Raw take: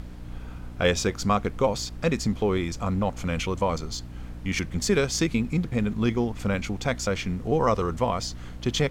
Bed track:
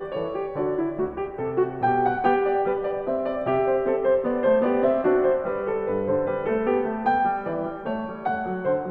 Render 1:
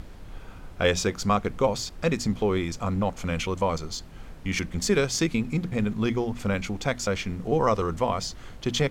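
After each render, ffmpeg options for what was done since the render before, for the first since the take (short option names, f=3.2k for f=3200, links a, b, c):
-af "bandreject=f=60:t=h:w=6,bandreject=f=120:t=h:w=6,bandreject=f=180:t=h:w=6,bandreject=f=240:t=h:w=6,bandreject=f=300:t=h:w=6"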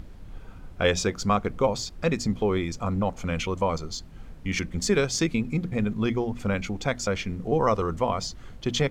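-af "afftdn=nr=6:nf=-43"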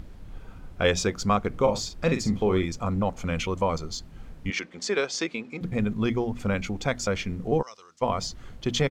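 -filter_complex "[0:a]asplit=3[a][b][c];[a]afade=t=out:st=1.52:d=0.02[d];[b]asplit=2[e][f];[f]adelay=43,volume=-8dB[g];[e][g]amix=inputs=2:normalize=0,afade=t=in:st=1.52:d=0.02,afade=t=out:st=2.65:d=0.02[h];[c]afade=t=in:st=2.65:d=0.02[i];[d][h][i]amix=inputs=3:normalize=0,asettb=1/sr,asplit=3[j][k][l];[j]atrim=end=4.504[m];[k]atrim=start=4.5:end=5.61,asetpts=PTS-STARTPTS,afade=t=in:d=0.004:c=qsin,afade=t=out:st=1.106:d=0.004:c=qsin,highpass=400,lowpass=5.6k[n];[l]atrim=start=5.606[o];[m][n]acrossfade=d=0.004:c1=hsin:c2=qsin[p];[p][o]acrossfade=d=0.004:c1=qsin:c2=hsin,asplit=3[q][r][s];[q]afade=t=out:st=7.61:d=0.02[t];[r]bandpass=f=5.4k:t=q:w=2.2,afade=t=in:st=7.61:d=0.02,afade=t=out:st=8.01:d=0.02[u];[s]afade=t=in:st=8.01:d=0.02[v];[t][u][v]amix=inputs=3:normalize=0"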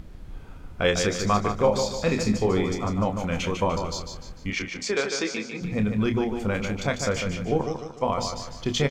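-filter_complex "[0:a]asplit=2[a][b];[b]adelay=28,volume=-8.5dB[c];[a][c]amix=inputs=2:normalize=0,asplit=2[d][e];[e]aecho=0:1:149|298|447|596|745:0.473|0.199|0.0835|0.0351|0.0147[f];[d][f]amix=inputs=2:normalize=0"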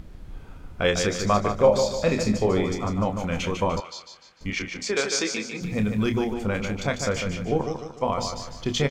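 -filter_complex "[0:a]asettb=1/sr,asplit=3[a][b][c];[a]atrim=end=1.294[d];[b]atrim=start=1.29:end=2.67,asetpts=PTS-STARTPTS,afade=t=in:d=0.004:c=qsin,afade=t=out:st=1.376:d=0.004:c=qsin,equalizer=f=590:t=o:w=0.26:g=9[e];[c]atrim=start=2.666[f];[d][e]acrossfade=d=0.004:c1=hsin:c2=qsin[g];[g][f]acrossfade=d=0.004:c1=qsin:c2=hsin,asettb=1/sr,asplit=3[h][i][j];[h]atrim=end=3.804[k];[i]atrim=start=3.8:end=4.41,asetpts=PTS-STARTPTS,afade=t=in:d=0.004:c=qsin,afade=t=out:st=0.606:d=0.004:c=qsin,bandpass=f=2.5k:t=q:w=0.91[l];[j]atrim=start=4.406[m];[k][l]acrossfade=d=0.004:c1=hsin:c2=qsin[n];[n][m]acrossfade=d=0.004:c1=qsin:c2=hsin,asettb=1/sr,asplit=3[o][p][q];[o]atrim=end=4.964[r];[p]atrim=start=4.96:end=6.34,asetpts=PTS-STARTPTS,afade=t=in:d=0.004:c=qsin,afade=t=out:st=1.376:d=0.004:c=qsin,highshelf=f=6k:g=11.5[s];[q]atrim=start=6.336[t];[r][s]acrossfade=d=0.004:c1=hsin:c2=qsin[u];[u][t]acrossfade=d=0.004:c1=qsin:c2=hsin"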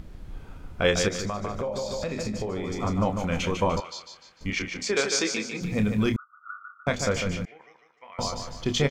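-filter_complex "[0:a]asettb=1/sr,asplit=3[a][b][c];[a]atrim=end=1.084[d];[b]atrim=start=1.08:end=2.83,asetpts=PTS-STARTPTS,afade=t=in:d=0.004:c=qsin,afade=t=out:st=1.746:d=0.004:c=qsin,acompressor=threshold=-26dB:ratio=12:attack=3.2:release=140:knee=1:detection=peak[e];[c]atrim=start=2.826[f];[d][e]acrossfade=d=0.004:c1=hsin:c2=qsin[g];[g][f]acrossfade=d=0.004:c1=qsin:c2=hsin,asettb=1/sr,asplit=3[h][i][j];[h]atrim=end=6.164[k];[i]atrim=start=6.16:end=6.87,asetpts=PTS-STARTPTS,afade=t=in:d=0.004:c=qsin,afade=t=out:st=0.706:d=0.004:c=qsin,asuperpass=centerf=1300:order=20:qfactor=3.7[l];[j]atrim=start=6.866[m];[k][l]acrossfade=d=0.004:c1=hsin:c2=qsin[n];[n][m]acrossfade=d=0.004:c1=qsin:c2=hsin,asettb=1/sr,asplit=3[o][p][q];[o]atrim=end=7.454[r];[p]atrim=start=7.45:end=8.19,asetpts=PTS-STARTPTS,afade=t=in:d=0.004:c=qsin,afade=t=out:st=0.736:d=0.004:c=qsin,bandpass=f=2k:t=q:w=6.1[s];[q]atrim=start=8.186[t];[r][s]acrossfade=d=0.004:c1=hsin:c2=qsin[u];[u][t]acrossfade=d=0.004:c1=qsin:c2=hsin"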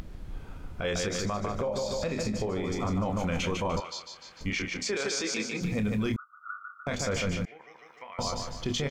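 -af "alimiter=limit=-21.5dB:level=0:latency=1:release=24,acompressor=mode=upward:threshold=-39dB:ratio=2.5"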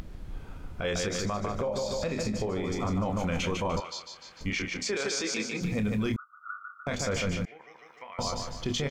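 -af anull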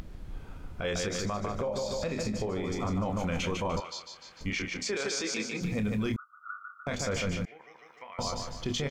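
-af "volume=-1.5dB"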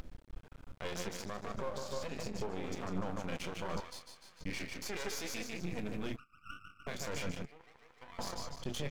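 -af "flanger=delay=3.8:depth=3.6:regen=63:speed=0.75:shape=sinusoidal,aeval=exprs='max(val(0),0)':c=same"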